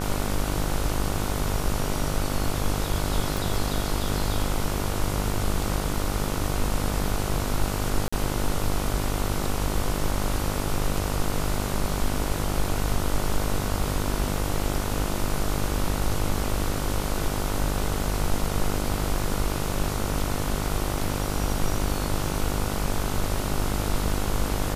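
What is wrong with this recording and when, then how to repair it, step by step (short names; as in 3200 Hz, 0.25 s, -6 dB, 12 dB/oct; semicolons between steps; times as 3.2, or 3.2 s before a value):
buzz 50 Hz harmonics 30 -29 dBFS
3.37 pop
8.08–8.12 gap 45 ms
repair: de-click; de-hum 50 Hz, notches 30; interpolate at 8.08, 45 ms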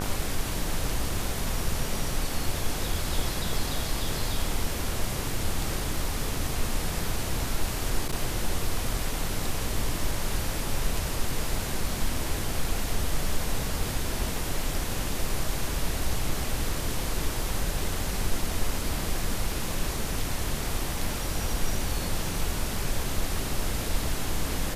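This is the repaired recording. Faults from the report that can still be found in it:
none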